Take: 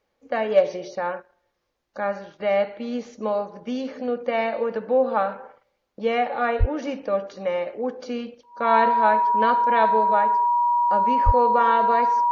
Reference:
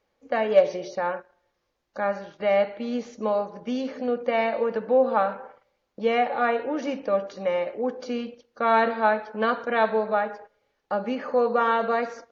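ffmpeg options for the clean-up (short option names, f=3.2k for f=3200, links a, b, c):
-filter_complex "[0:a]bandreject=f=960:w=30,asplit=3[a][b][c];[a]afade=t=out:st=6.59:d=0.02[d];[b]highpass=f=140:w=0.5412,highpass=f=140:w=1.3066,afade=t=in:st=6.59:d=0.02,afade=t=out:st=6.71:d=0.02[e];[c]afade=t=in:st=6.71:d=0.02[f];[d][e][f]amix=inputs=3:normalize=0,asplit=3[g][h][i];[g]afade=t=out:st=11.25:d=0.02[j];[h]highpass=f=140:w=0.5412,highpass=f=140:w=1.3066,afade=t=in:st=11.25:d=0.02,afade=t=out:st=11.37:d=0.02[k];[i]afade=t=in:st=11.37:d=0.02[l];[j][k][l]amix=inputs=3:normalize=0"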